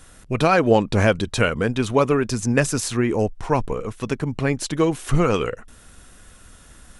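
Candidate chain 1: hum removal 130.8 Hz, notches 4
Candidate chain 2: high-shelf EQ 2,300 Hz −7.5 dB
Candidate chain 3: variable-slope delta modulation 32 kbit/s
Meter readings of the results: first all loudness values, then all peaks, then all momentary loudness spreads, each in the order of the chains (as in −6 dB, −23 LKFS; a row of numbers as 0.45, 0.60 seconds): −21.5, −22.0, −22.0 LKFS; −4.0, −4.5, −4.5 dBFS; 10, 10, 9 LU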